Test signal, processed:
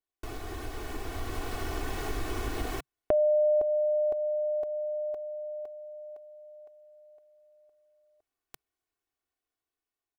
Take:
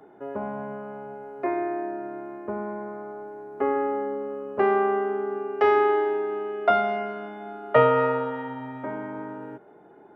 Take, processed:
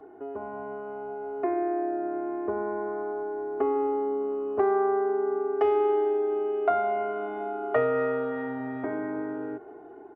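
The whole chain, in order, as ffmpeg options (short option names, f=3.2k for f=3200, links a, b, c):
-af "highshelf=f=2.2k:g=-12,aecho=1:1:2.7:0.76,acompressor=threshold=-37dB:ratio=2,equalizer=f=140:t=o:w=0.28:g=-6,dynaudnorm=f=480:g=5:m=6dB"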